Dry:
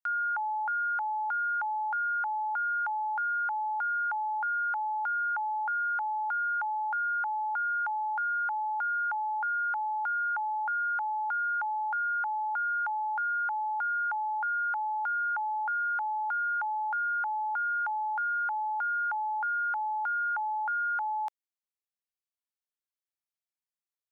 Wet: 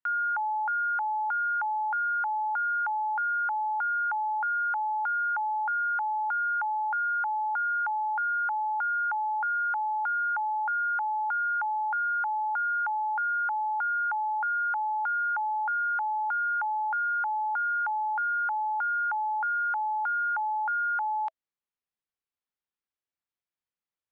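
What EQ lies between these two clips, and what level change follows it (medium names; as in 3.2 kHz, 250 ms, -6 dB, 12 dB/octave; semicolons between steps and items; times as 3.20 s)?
distance through air 240 m; band-stop 650 Hz, Q 12; +3.5 dB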